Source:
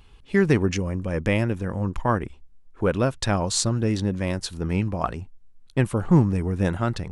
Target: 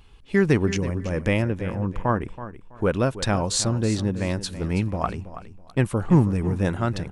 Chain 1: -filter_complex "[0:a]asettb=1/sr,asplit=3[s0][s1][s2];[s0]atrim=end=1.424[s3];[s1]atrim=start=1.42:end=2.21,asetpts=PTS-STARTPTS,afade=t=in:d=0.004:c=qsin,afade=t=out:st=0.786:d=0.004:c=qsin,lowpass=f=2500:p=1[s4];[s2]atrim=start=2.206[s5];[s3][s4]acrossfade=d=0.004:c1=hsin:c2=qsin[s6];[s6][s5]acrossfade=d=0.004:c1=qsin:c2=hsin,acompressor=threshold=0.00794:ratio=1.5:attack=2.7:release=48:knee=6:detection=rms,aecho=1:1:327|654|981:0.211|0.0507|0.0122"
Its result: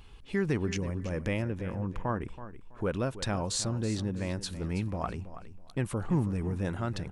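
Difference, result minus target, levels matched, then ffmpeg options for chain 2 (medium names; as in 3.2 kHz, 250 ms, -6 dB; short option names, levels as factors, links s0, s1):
compression: peak gain reduction +11.5 dB
-filter_complex "[0:a]asettb=1/sr,asplit=3[s0][s1][s2];[s0]atrim=end=1.424[s3];[s1]atrim=start=1.42:end=2.21,asetpts=PTS-STARTPTS,afade=t=in:d=0.004:c=qsin,afade=t=out:st=0.786:d=0.004:c=qsin,lowpass=f=2500:p=1[s4];[s2]atrim=start=2.206[s5];[s3][s4]acrossfade=d=0.004:c1=hsin:c2=qsin[s6];[s6][s5]acrossfade=d=0.004:c1=qsin:c2=hsin,aecho=1:1:327|654|981:0.211|0.0507|0.0122"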